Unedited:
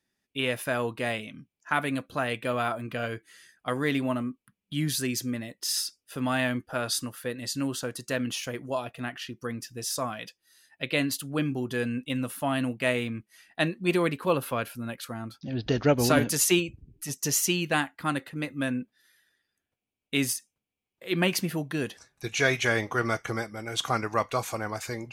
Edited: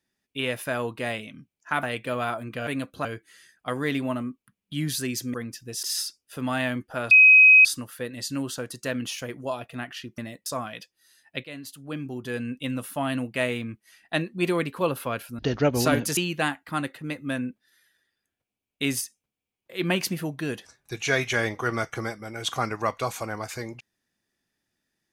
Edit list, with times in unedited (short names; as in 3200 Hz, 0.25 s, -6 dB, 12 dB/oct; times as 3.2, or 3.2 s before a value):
1.83–2.21 move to 3.05
5.34–5.62 swap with 9.43–9.92
6.9 add tone 2530 Hz -9.5 dBFS 0.54 s
10.9–12.09 fade in, from -16.5 dB
14.85–15.63 cut
16.41–17.49 cut